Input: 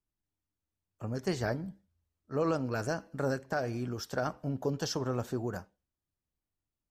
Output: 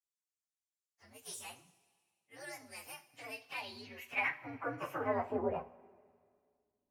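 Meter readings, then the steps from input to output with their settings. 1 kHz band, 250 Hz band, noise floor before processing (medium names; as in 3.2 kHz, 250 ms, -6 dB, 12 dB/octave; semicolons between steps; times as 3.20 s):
-2.5 dB, -11.5 dB, under -85 dBFS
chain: frequency axis rescaled in octaves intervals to 127%; bass shelf 500 Hz +4 dB; band-pass sweep 7.3 kHz -> 240 Hz, 3.01–6.58 s; two-slope reverb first 0.27 s, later 2 s, from -18 dB, DRR 7.5 dB; trim +10.5 dB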